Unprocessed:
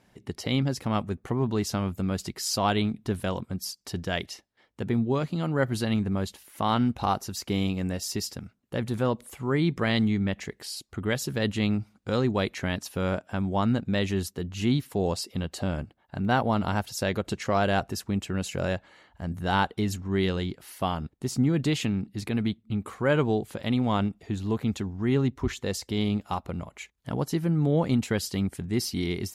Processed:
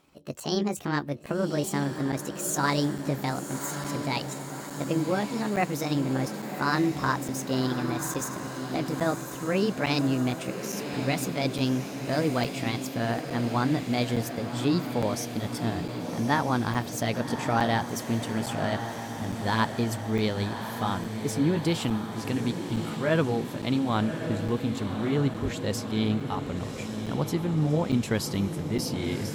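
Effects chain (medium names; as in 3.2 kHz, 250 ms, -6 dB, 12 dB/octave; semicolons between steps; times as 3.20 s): pitch bend over the whole clip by +6.5 st ending unshifted; echo that smears into a reverb 1126 ms, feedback 65%, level -8 dB; crackling interface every 0.86 s, samples 256, zero, from 0.40 s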